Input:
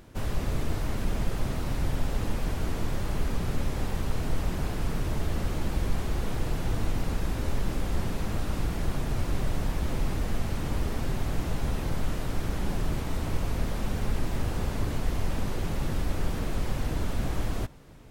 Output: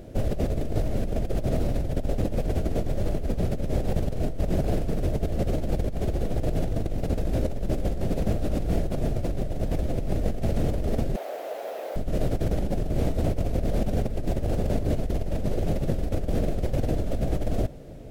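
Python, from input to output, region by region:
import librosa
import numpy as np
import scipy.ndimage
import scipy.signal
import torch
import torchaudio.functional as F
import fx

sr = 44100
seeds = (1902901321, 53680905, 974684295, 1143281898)

y = fx.chain(x, sr, fx.high_shelf(hz=3300.0, db=-10.0),
    fx.resample_bad(factor=3, down='none', up='hold'),
    fx.highpass(hz=550.0, slope=24), at=(11.16, 11.96))
y = fx.low_shelf_res(y, sr, hz=790.0, db=7.5, q=3.0)
y = fx.over_compress(y, sr, threshold_db=-22.0, ratio=-1.0)
y = F.gain(torch.from_numpy(y), -2.5).numpy()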